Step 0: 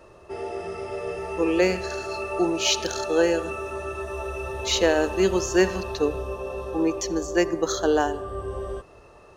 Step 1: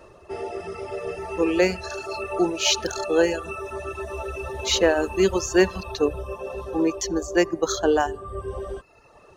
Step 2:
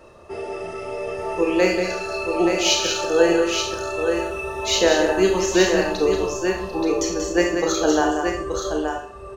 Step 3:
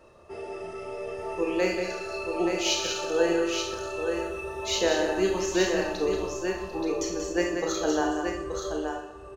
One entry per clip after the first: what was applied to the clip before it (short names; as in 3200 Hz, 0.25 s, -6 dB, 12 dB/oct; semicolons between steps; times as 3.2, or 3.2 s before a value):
reverb removal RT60 0.91 s; gain +2 dB
tapped delay 0.186/0.877 s -6.5/-6 dB; Schroeder reverb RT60 0.48 s, combs from 26 ms, DRR 1.5 dB
feedback echo 0.124 s, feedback 50%, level -14.5 dB; gain -7.5 dB